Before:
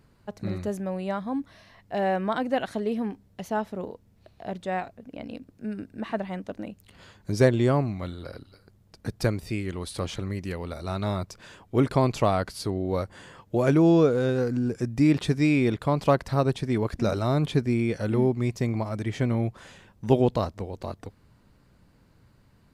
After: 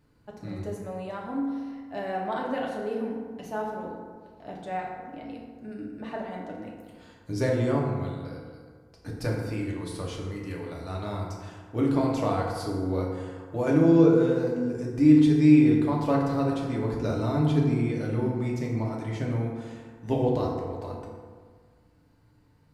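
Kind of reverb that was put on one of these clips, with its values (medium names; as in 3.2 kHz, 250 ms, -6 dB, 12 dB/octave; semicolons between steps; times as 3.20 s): FDN reverb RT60 1.7 s, low-frequency decay 1×, high-frequency decay 0.45×, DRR -3 dB; trim -8 dB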